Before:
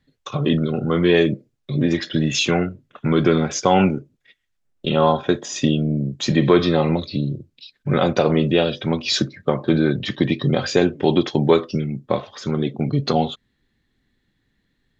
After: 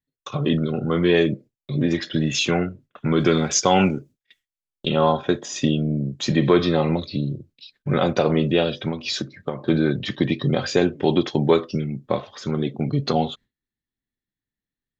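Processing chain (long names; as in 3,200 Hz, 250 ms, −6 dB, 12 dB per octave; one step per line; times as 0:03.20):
noise gate with hold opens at −39 dBFS
0:03.20–0:04.88: high-shelf EQ 3,600 Hz +11 dB
0:08.88–0:09.64: downward compressor 6 to 1, threshold −21 dBFS, peak gain reduction 8.5 dB
level −2 dB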